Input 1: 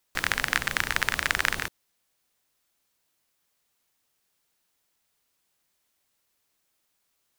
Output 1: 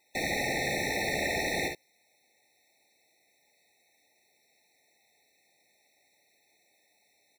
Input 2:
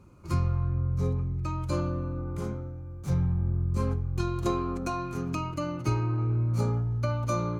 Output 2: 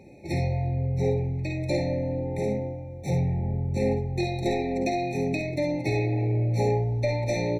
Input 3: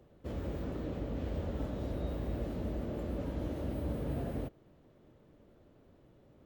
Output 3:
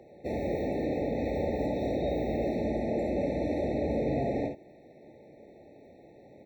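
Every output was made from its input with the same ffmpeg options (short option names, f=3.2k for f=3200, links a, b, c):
-filter_complex "[0:a]asplit=2[a][b];[b]highpass=f=720:p=1,volume=31dB,asoftclip=type=tanh:threshold=-1dB[c];[a][c]amix=inputs=2:normalize=0,lowpass=f=2.3k:p=1,volume=-6dB,aecho=1:1:53|67:0.422|0.355,asoftclip=type=tanh:threshold=-5.5dB,afftfilt=real='re*eq(mod(floor(b*sr/1024/890),2),0)':imag='im*eq(mod(floor(b*sr/1024/890),2),0)':win_size=1024:overlap=0.75,volume=-9dB"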